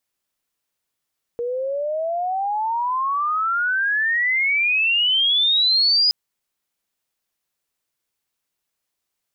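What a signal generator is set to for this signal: sweep logarithmic 470 Hz -> 5 kHz -22 dBFS -> -13.5 dBFS 4.72 s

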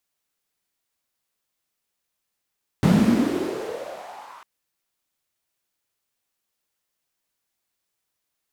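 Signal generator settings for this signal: swept filtered noise white, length 1.60 s bandpass, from 170 Hz, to 1.1 kHz, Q 5.2, exponential, gain ramp -39 dB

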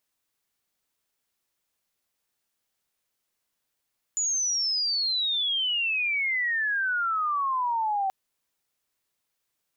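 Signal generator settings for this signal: sweep logarithmic 7 kHz -> 760 Hz -23.5 dBFS -> -23.5 dBFS 3.93 s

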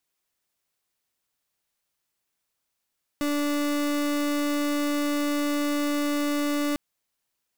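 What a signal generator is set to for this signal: pulse 291 Hz, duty 36% -25.5 dBFS 3.55 s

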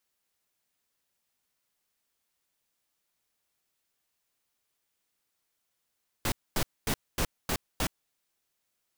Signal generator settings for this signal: noise bursts pink, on 0.07 s, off 0.24 s, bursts 6, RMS -28 dBFS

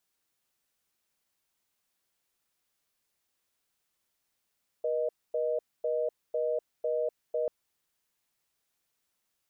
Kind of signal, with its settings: call progress tone reorder tone, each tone -29.5 dBFS 2.64 s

